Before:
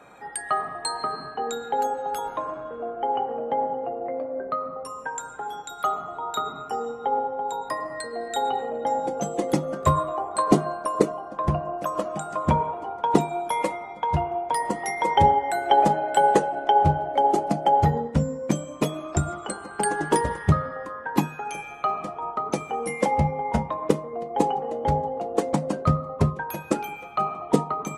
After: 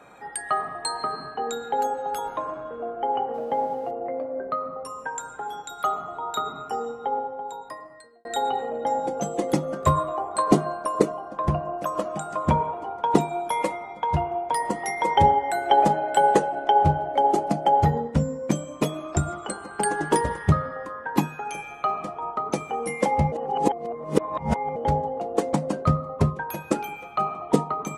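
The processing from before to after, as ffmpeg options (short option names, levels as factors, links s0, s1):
-filter_complex "[0:a]asettb=1/sr,asplit=3[s0][s1][s2];[s0]atrim=end=3.344[s3];[s1]atrim=start=3.34:end=3.91,asetpts=PTS-STARTPTS,afade=t=in:d=0.004:c=qsin,afade=t=out:st=0.566:d=0.004:c=qsin,aeval=exprs='sgn(val(0))*max(abs(val(0))-0.0015,0)':c=same[s4];[s2]atrim=start=3.906[s5];[s3][s4]acrossfade=d=0.004:c1=hsin:c2=qsin[s6];[s6][s5]acrossfade=d=0.004:c1=qsin:c2=hsin,asplit=4[s7][s8][s9][s10];[s7]atrim=end=8.25,asetpts=PTS-STARTPTS,afade=t=out:st=6.78:d=1.47[s11];[s8]atrim=start=8.25:end=23.322,asetpts=PTS-STARTPTS,afade=t=in:d=0.004:c=hsin[s12];[s9]atrim=start=23.318:end=24.762,asetpts=PTS-STARTPTS,areverse[s13];[s10]atrim=start=24.758[s14];[s11][s12]concat=n=2:v=0:a=1[s15];[s15][s13]acrossfade=d=0.004:c1=hsin:c2=hsin[s16];[s16][s14]acrossfade=d=0.004:c1=hsin:c2=hsin"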